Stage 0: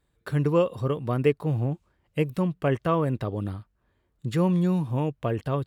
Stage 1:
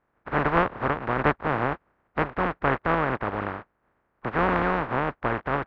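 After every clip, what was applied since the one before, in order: spectral contrast lowered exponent 0.12; LPF 1600 Hz 24 dB/oct; gain +8 dB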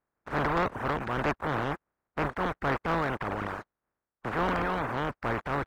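transient shaper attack -4 dB, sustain +8 dB; sample leveller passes 2; reverb removal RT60 0.77 s; gain -8.5 dB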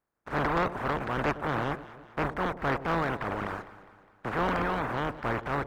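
echo with dull and thin repeats by turns 0.102 s, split 820 Hz, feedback 71%, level -13 dB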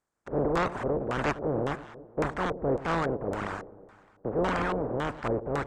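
LFO low-pass square 1.8 Hz 490–7800 Hz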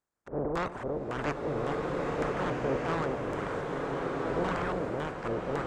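bloom reverb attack 1.52 s, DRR -1 dB; gain -5 dB

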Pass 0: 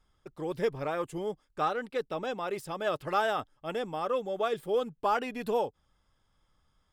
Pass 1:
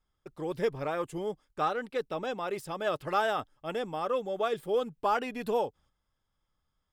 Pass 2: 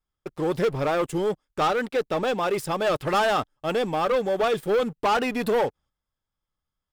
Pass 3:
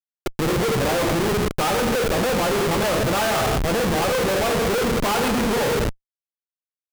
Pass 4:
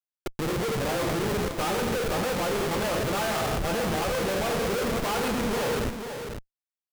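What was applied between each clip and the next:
gate -59 dBFS, range -9 dB
sample leveller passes 3
non-linear reverb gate 0.36 s falling, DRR 0.5 dB; Schmitt trigger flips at -26.5 dBFS; gain +2 dB
echo 0.495 s -7.5 dB; gain -7 dB

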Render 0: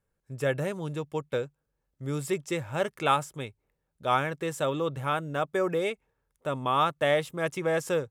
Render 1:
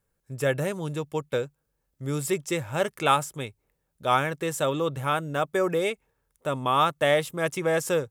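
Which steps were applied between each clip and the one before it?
high shelf 6700 Hz +7.5 dB; gain +2.5 dB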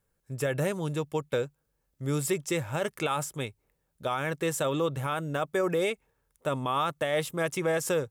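limiter -19 dBFS, peak gain reduction 11 dB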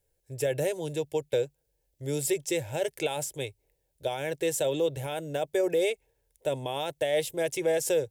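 fixed phaser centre 500 Hz, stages 4; gain +2.5 dB

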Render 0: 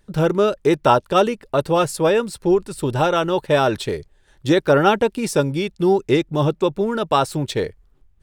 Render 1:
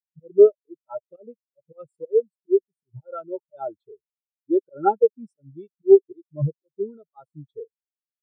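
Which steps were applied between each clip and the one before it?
high shelf 3100 Hz +10 dB; auto swell 0.121 s; spectral expander 4:1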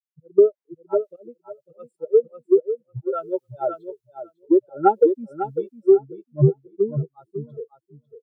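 compressor 16:1, threshold -21 dBFS, peak gain reduction 15.5 dB; on a send: feedback echo 0.549 s, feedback 15%, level -6.5 dB; on the sum: three-band expander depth 70%; gain +6.5 dB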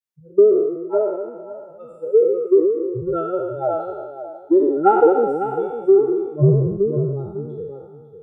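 spectral trails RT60 1.48 s

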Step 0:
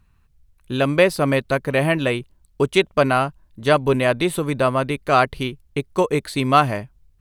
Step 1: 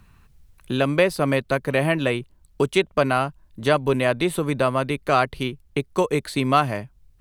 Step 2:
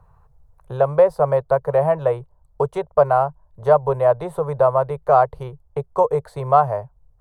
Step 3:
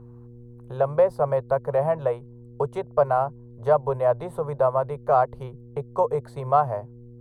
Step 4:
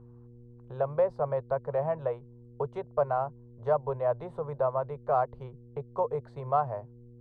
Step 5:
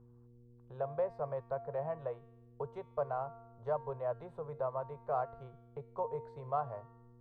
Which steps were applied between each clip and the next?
three-band squash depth 40%; gain -2.5 dB
EQ curve 150 Hz 0 dB, 270 Hz -27 dB, 460 Hz +6 dB, 910 Hz +8 dB, 2600 Hz -22 dB, 6700 Hz -15 dB
buzz 120 Hz, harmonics 4, -40 dBFS -6 dB/oct; gain -5 dB
air absorption 130 m; gain -6.5 dB
resonator 230 Hz, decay 1.1 s, mix 70%; gain +1.5 dB

